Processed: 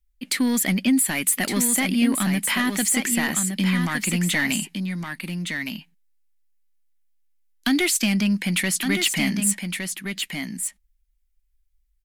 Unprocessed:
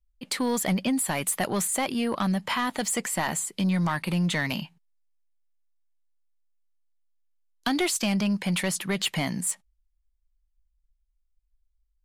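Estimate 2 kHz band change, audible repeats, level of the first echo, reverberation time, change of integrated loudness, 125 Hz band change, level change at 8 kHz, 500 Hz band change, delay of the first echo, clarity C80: +7.0 dB, 1, -6.0 dB, no reverb, +4.5 dB, +2.5 dB, +7.0 dB, -1.5 dB, 1163 ms, no reverb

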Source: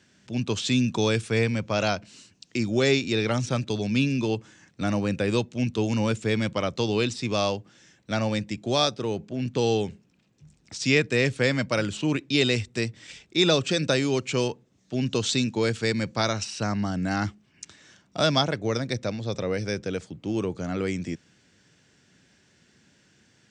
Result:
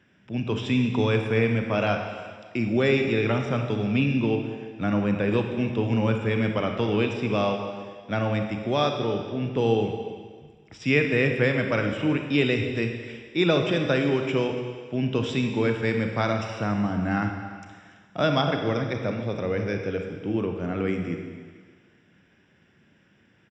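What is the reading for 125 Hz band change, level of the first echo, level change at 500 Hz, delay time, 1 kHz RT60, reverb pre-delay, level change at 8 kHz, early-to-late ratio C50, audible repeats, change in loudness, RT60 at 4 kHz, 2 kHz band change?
+1.5 dB, -18.5 dB, +1.5 dB, 286 ms, 1.7 s, 28 ms, under -15 dB, 5.0 dB, 1, +0.5 dB, 1.7 s, +1.0 dB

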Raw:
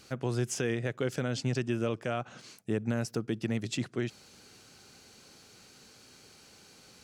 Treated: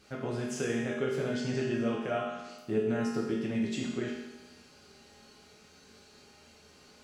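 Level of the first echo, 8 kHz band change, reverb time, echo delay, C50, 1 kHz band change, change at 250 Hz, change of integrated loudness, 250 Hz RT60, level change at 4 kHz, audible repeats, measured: no echo, -4.5 dB, 1.1 s, no echo, 1.0 dB, +2.0 dB, +2.0 dB, +0.5 dB, 1.1 s, -2.0 dB, no echo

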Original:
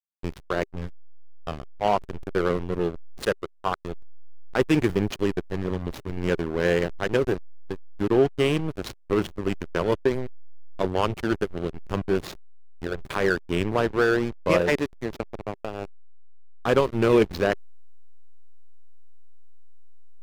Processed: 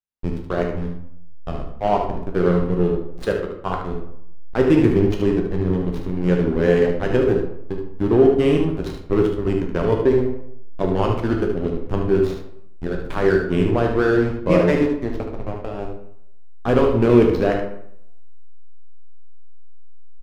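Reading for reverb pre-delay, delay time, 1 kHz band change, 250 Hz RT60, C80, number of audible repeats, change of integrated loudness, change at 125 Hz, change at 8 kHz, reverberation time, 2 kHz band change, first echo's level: 9 ms, 74 ms, +2.5 dB, 0.75 s, 8.5 dB, 1, +6.0 dB, +8.0 dB, no reading, 0.70 s, 0.0 dB, -7.5 dB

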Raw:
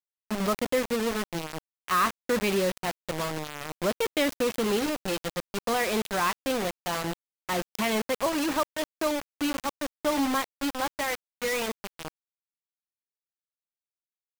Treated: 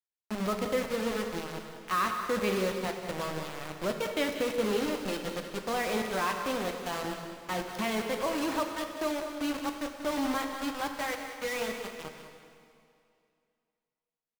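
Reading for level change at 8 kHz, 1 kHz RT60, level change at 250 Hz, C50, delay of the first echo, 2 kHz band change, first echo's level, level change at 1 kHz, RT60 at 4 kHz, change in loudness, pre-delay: -6.0 dB, 2.4 s, -3.5 dB, 4.5 dB, 188 ms, -3.5 dB, -10.5 dB, -3.5 dB, 2.3 s, -3.5 dB, 4 ms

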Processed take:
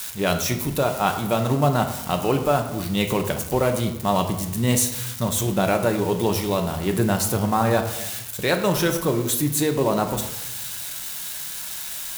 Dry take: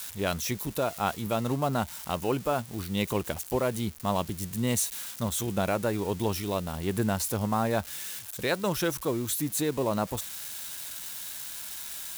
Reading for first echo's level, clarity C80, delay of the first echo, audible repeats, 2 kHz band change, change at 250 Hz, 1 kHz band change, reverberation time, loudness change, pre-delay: no echo, 11.0 dB, no echo, no echo, +7.0 dB, +7.0 dB, +7.5 dB, 0.95 s, +7.5 dB, 5 ms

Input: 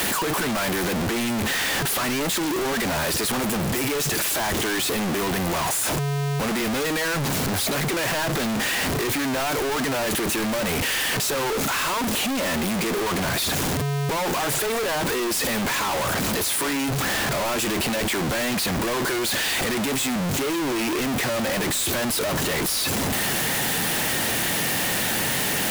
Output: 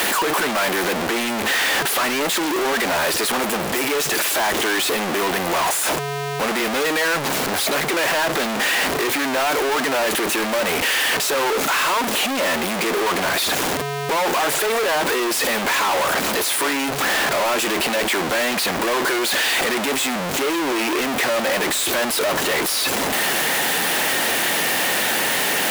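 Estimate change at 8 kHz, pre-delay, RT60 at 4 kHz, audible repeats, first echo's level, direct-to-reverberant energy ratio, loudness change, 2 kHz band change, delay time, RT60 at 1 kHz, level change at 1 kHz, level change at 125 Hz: +2.0 dB, no reverb, no reverb, no echo, no echo, no reverb, +3.5 dB, +6.0 dB, no echo, no reverb, +6.0 dB, -7.0 dB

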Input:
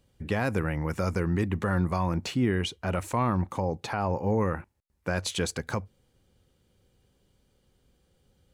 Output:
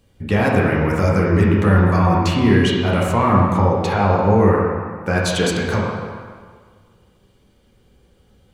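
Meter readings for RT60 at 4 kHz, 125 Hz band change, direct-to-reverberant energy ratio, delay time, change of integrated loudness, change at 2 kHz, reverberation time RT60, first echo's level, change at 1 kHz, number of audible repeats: 1.3 s, +12.5 dB, -4.5 dB, no echo, +12.0 dB, +12.0 dB, 1.7 s, no echo, +12.5 dB, no echo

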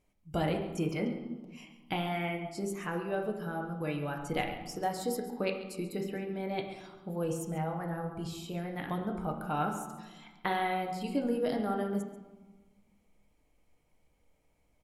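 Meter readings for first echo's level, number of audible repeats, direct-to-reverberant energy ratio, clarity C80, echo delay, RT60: -14.0 dB, 1, 2.0 dB, 8.0 dB, 137 ms, 1.3 s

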